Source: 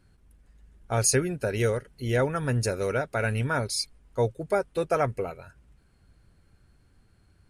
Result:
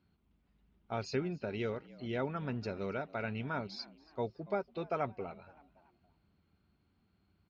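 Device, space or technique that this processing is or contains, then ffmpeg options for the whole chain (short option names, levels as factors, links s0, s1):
frequency-shifting delay pedal into a guitar cabinet: -filter_complex "[0:a]lowpass=f=5800:w=0.5412,lowpass=f=5800:w=1.3066,asplit=4[s0][s1][s2][s3];[s1]adelay=283,afreqshift=77,volume=0.0794[s4];[s2]adelay=566,afreqshift=154,volume=0.0343[s5];[s3]adelay=849,afreqshift=231,volume=0.0146[s6];[s0][s4][s5][s6]amix=inputs=4:normalize=0,highpass=92,equalizer=f=120:t=q:w=4:g=-8,equalizer=f=200:t=q:w=4:g=4,equalizer=f=510:t=q:w=4:g=-7,equalizer=f=1700:t=q:w=4:g=-9,lowpass=f=4300:w=0.5412,lowpass=f=4300:w=1.3066,volume=0.422"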